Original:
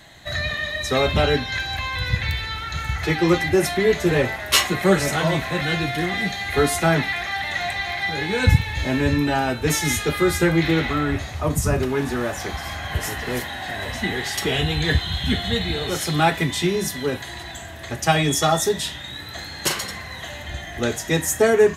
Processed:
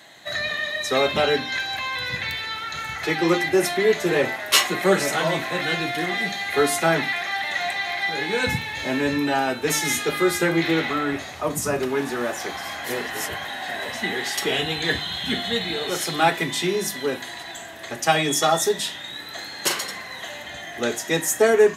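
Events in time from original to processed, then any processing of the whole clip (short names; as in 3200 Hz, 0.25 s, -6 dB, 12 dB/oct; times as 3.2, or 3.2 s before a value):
12.84–13.45 reverse
whole clip: HPF 230 Hz 12 dB/oct; notches 50/100/150/200/250/300/350 Hz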